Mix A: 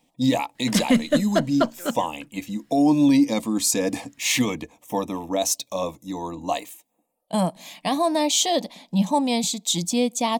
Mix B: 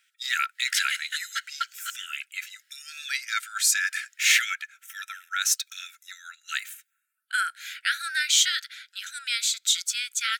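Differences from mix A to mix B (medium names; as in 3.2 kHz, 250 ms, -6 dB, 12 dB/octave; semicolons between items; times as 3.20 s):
speech: remove static phaser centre 390 Hz, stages 6; master: add brick-wall FIR high-pass 1.3 kHz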